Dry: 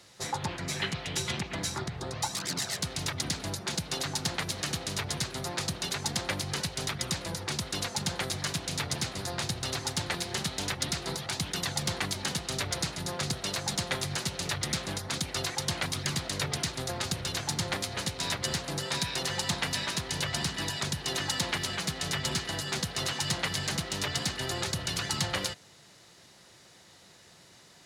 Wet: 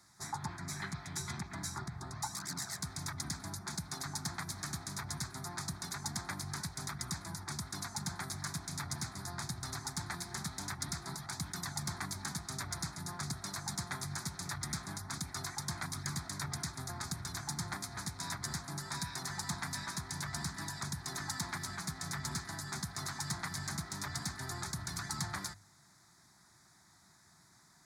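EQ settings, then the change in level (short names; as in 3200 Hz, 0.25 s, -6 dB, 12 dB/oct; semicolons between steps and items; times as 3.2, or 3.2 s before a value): notches 50/100 Hz; fixed phaser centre 1200 Hz, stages 4; -4.5 dB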